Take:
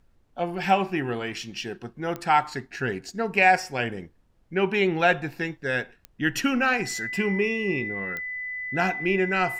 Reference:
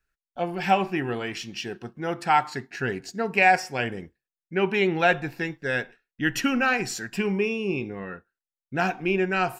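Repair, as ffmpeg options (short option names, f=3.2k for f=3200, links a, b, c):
-af "adeclick=t=4,bandreject=f=2k:w=30,agate=range=-21dB:threshold=-51dB"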